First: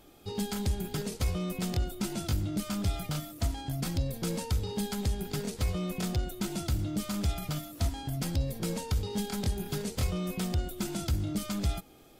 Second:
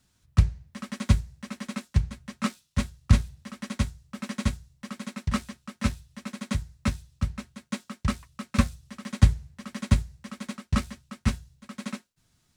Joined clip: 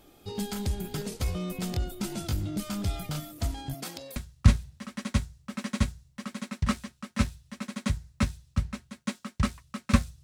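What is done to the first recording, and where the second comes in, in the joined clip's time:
first
0:03.73–0:04.16: high-pass filter 250 Hz → 710 Hz
0:04.16: continue with second from 0:02.81

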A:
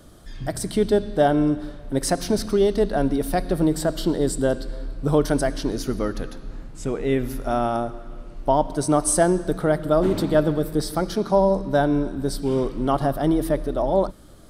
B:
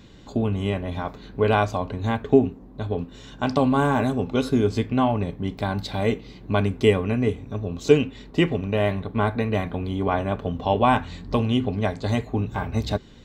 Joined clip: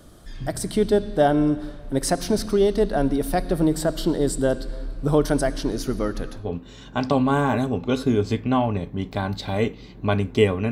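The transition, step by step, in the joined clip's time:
A
0:06.43: continue with B from 0:02.89, crossfade 0.18 s

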